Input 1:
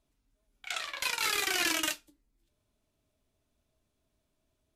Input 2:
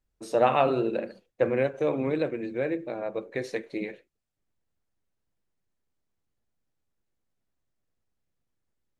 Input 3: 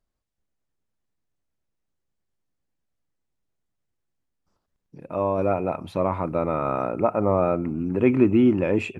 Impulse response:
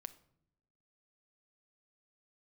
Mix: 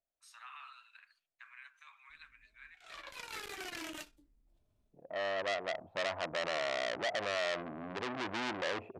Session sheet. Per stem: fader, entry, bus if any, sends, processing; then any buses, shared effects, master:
−3.5 dB, 2.10 s, no bus, no send, spectral tilt −2 dB per octave; brickwall limiter −29.5 dBFS, peak gain reduction 7.5 dB; level that may rise only so fast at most 110 dB per second; automatic ducking −12 dB, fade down 0.20 s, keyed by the third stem
−13.0 dB, 0.00 s, bus A, no send, Butterworth high-pass 1,100 Hz 48 dB per octave; brickwall limiter −27.5 dBFS, peak gain reduction 9 dB
0:05.64 −13.5 dB → 0:06.44 −6 dB, 0.00 s, bus A, no send, low-pass with resonance 680 Hz, resonance Q 5.3
bus A: 0.0 dB, low-shelf EQ 460 Hz −9.5 dB; brickwall limiter −21.5 dBFS, peak gain reduction 10.5 dB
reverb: not used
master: saturating transformer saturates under 2,400 Hz

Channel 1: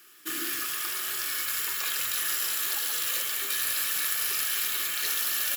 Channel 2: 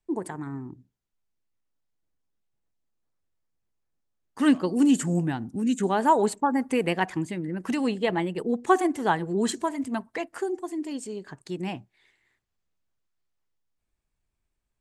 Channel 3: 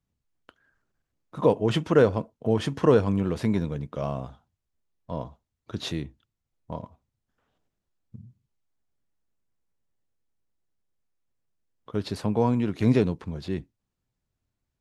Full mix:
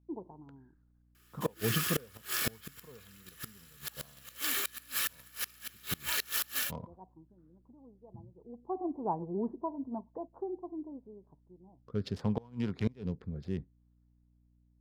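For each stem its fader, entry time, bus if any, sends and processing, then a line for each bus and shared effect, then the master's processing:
−10.5 dB, 1.15 s, no send, high-shelf EQ 3,200 Hz −3.5 dB; automatic gain control gain up to 12 dB
−8.0 dB, 0.00 s, no send, Chebyshev low-pass filter 990 Hz, order 5; automatic ducking −22 dB, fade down 1.10 s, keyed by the third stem
−3.0 dB, 0.00 s, no send, adaptive Wiener filter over 15 samples; thirty-one-band graphic EQ 315 Hz −10 dB, 630 Hz −6 dB, 3,150 Hz +5 dB, 5,000 Hz +5 dB; rotating-speaker cabinet horn 0.7 Hz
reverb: not used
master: gate with flip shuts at −18 dBFS, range −28 dB; mains hum 60 Hz, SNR 29 dB

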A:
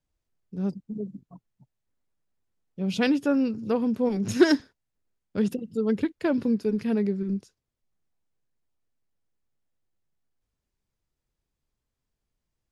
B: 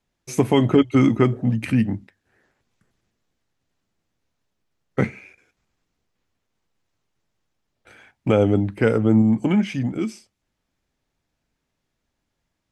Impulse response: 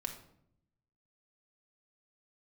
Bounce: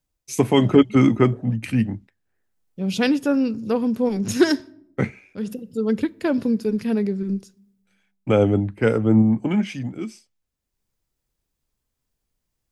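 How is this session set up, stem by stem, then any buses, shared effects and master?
+2.0 dB, 0.00 s, send −15.5 dB, high-shelf EQ 7,300 Hz +8.5 dB; automatic ducking −15 dB, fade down 0.60 s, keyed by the second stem
−1.0 dB, 0.00 s, no send, multiband upward and downward expander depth 70%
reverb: on, RT60 0.70 s, pre-delay 4 ms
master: no processing

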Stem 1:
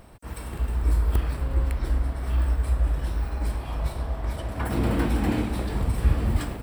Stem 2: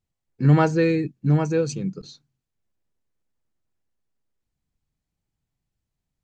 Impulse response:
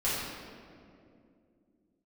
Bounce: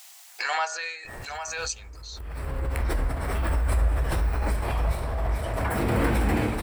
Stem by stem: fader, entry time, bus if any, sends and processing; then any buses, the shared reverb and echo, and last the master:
−4.5 dB, 1.05 s, no send, low-shelf EQ 260 Hz +10.5 dB; flanger 2 Hz, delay 6.6 ms, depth 8.4 ms, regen −53%; flat-topped bell 980 Hz +9.5 dB 2.9 octaves; automatic ducking −23 dB, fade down 1.45 s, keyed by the second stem
−5.0 dB, 0.00 s, no send, elliptic high-pass filter 700 Hz, stop band 70 dB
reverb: not used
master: high-shelf EQ 3,000 Hz +11.5 dB; hum removal 62.82 Hz, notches 30; background raised ahead of every attack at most 24 dB per second

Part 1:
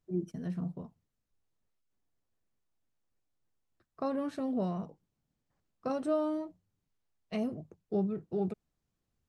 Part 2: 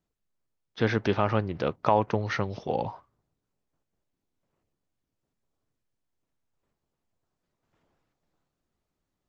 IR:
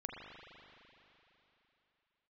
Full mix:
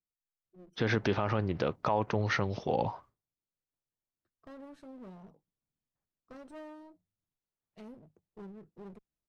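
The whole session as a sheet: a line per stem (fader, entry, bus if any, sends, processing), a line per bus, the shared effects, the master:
−12.5 dB, 0.45 s, no send, asymmetric clip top −43 dBFS; automatic ducking −9 dB, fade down 1.20 s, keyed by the second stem
+0.5 dB, 0.00 s, no send, noise gate with hold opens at −50 dBFS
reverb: not used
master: brickwall limiter −17 dBFS, peak gain reduction 11.5 dB

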